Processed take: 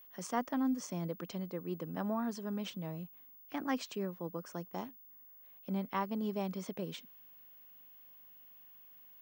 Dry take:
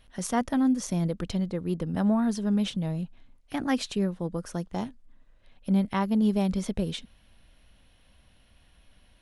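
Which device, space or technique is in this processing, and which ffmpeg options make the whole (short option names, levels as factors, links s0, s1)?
old television with a line whistle: -af "highpass=f=170:w=0.5412,highpass=f=170:w=1.3066,equalizer=f=210:t=q:w=4:g=-6,equalizer=f=1100:t=q:w=4:g=5,equalizer=f=3800:t=q:w=4:g=-6,lowpass=f=7800:w=0.5412,lowpass=f=7800:w=1.3066,aeval=exprs='val(0)+0.00447*sin(2*PI*15625*n/s)':c=same,volume=0.422"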